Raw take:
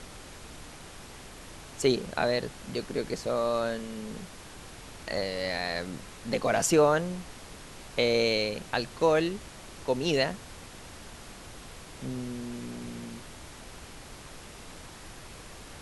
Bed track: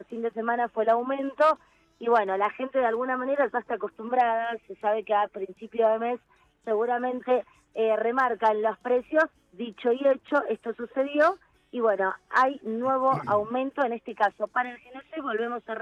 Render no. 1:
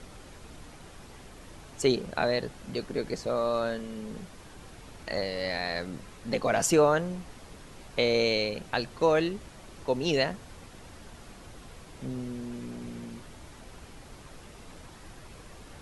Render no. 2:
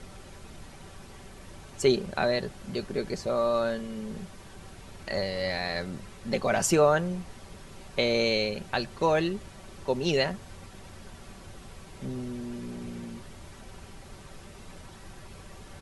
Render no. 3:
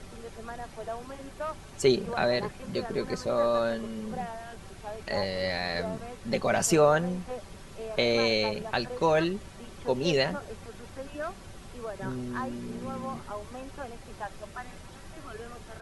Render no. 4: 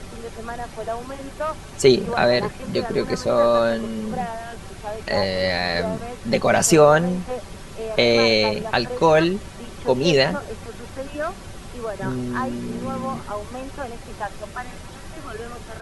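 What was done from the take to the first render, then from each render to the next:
broadband denoise 6 dB, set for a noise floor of −47 dBFS
parametric band 94 Hz +11 dB 0.37 octaves; comb filter 5.2 ms, depth 40%
mix in bed track −14.5 dB
level +8.5 dB; brickwall limiter −3 dBFS, peak gain reduction 1 dB

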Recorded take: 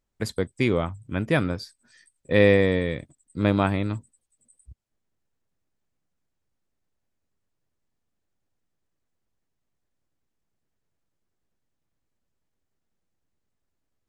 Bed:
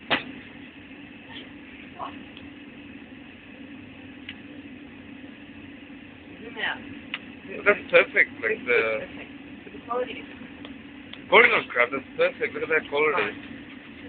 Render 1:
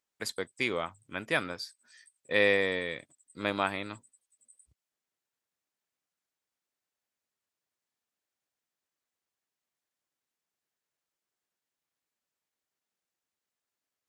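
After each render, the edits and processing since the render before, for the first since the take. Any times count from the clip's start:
high-pass filter 1,200 Hz 6 dB per octave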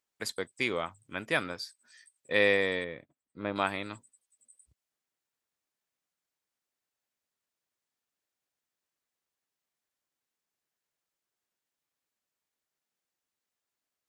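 0:02.84–0:03.56: head-to-tape spacing loss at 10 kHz 38 dB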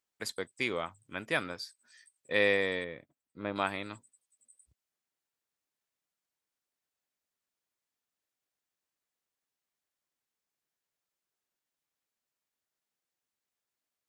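level −2 dB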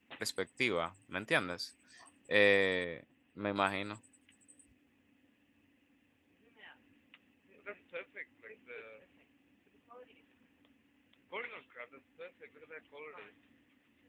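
mix in bed −27.5 dB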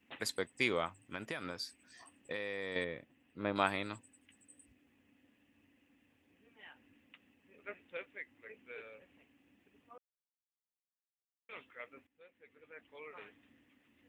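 0:00.98–0:02.76: downward compressor 16 to 1, threshold −35 dBFS
0:09.98–0:11.49: silence
0:12.07–0:13.17: fade in, from −17.5 dB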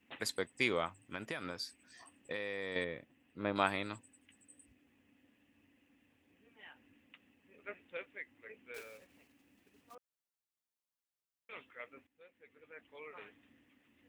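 0:08.74–0:09.95: one scale factor per block 3 bits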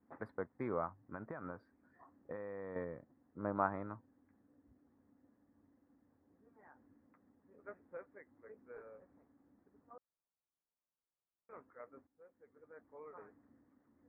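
inverse Chebyshev low-pass filter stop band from 2,700 Hz, stop band 40 dB
dynamic equaliser 380 Hz, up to −4 dB, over −50 dBFS, Q 1

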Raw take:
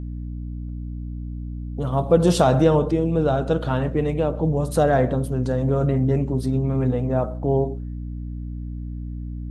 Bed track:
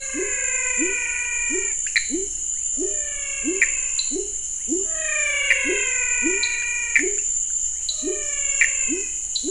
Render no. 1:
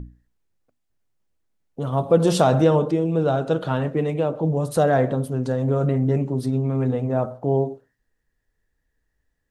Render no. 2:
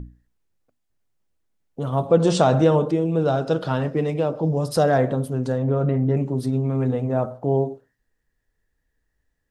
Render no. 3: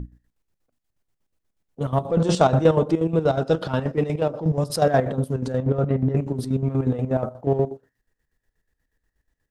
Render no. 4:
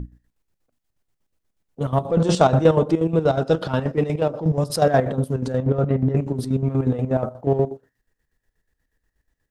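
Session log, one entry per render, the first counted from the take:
mains-hum notches 60/120/180/240/300 Hz
0:02.07–0:02.62: Butterworth low-pass 8,500 Hz 48 dB per octave; 0:03.25–0:04.98: parametric band 5,100 Hz +14.5 dB 0.26 octaves; 0:05.58–0:06.17: high-frequency loss of the air 140 metres
in parallel at −9.5 dB: asymmetric clip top −23 dBFS; on the sum: square-wave tremolo 8.3 Hz, depth 65%, duty 50%
level +1.5 dB

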